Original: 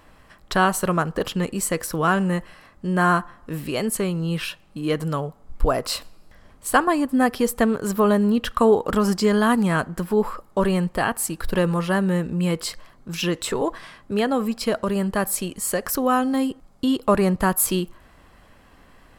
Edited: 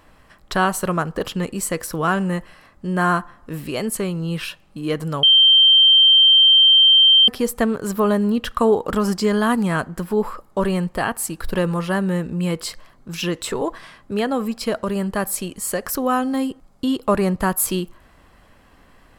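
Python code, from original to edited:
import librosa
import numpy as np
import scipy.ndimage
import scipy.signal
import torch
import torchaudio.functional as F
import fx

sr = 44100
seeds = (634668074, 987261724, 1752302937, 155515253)

y = fx.edit(x, sr, fx.bleep(start_s=5.23, length_s=2.05, hz=3140.0, db=-8.5), tone=tone)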